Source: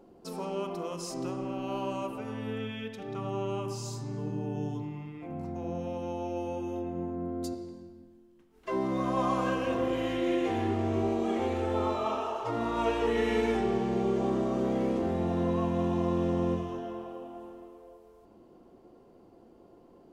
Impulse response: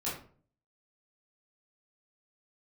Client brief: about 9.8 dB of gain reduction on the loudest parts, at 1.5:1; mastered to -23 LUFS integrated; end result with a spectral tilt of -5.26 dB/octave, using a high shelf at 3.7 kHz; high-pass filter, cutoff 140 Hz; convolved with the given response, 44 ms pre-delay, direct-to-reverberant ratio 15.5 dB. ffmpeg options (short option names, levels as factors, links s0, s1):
-filter_complex "[0:a]highpass=140,highshelf=f=3700:g=7.5,acompressor=threshold=0.00224:ratio=1.5,asplit=2[s0][s1];[1:a]atrim=start_sample=2205,adelay=44[s2];[s1][s2]afir=irnorm=-1:irlink=0,volume=0.106[s3];[s0][s3]amix=inputs=2:normalize=0,volume=7.5"